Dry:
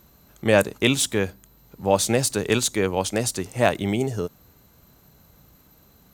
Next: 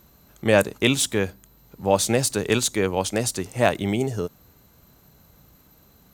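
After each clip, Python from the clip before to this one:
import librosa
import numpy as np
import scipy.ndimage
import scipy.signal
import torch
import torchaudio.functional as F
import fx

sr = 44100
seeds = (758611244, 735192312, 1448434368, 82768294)

y = x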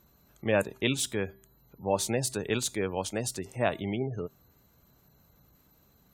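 y = fx.comb_fb(x, sr, f0_hz=130.0, decay_s=0.49, harmonics='odd', damping=0.0, mix_pct=40)
y = fx.spec_gate(y, sr, threshold_db=-30, keep='strong')
y = F.gain(torch.from_numpy(y), -4.0).numpy()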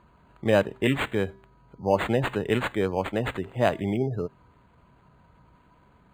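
y = np.interp(np.arange(len(x)), np.arange(len(x))[::8], x[::8])
y = F.gain(torch.from_numpy(y), 5.5).numpy()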